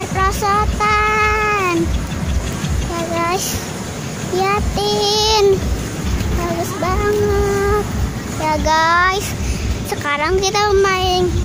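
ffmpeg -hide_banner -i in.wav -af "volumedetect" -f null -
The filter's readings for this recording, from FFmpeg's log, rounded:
mean_volume: -16.7 dB
max_volume: -2.7 dB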